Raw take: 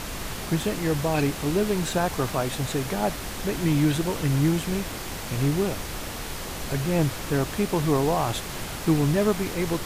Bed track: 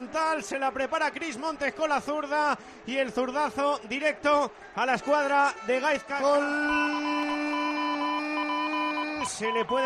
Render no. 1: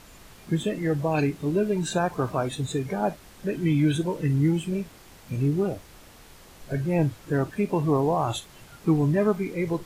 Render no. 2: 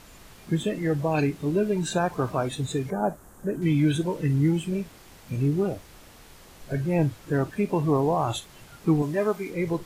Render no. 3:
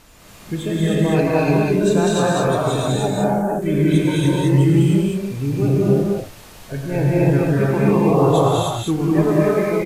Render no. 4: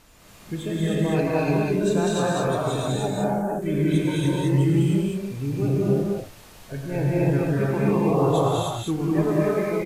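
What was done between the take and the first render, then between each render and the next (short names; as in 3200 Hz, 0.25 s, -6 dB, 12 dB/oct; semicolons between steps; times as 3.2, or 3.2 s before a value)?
noise print and reduce 16 dB
2.9–3.62 band shelf 3300 Hz -14.5 dB; 9.02–9.5 tone controls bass -11 dB, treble +3 dB
on a send: loudspeakers at several distances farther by 37 m -12 dB, 69 m -2 dB; on the sum: non-linear reverb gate 0.33 s rising, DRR -5 dB
gain -5.5 dB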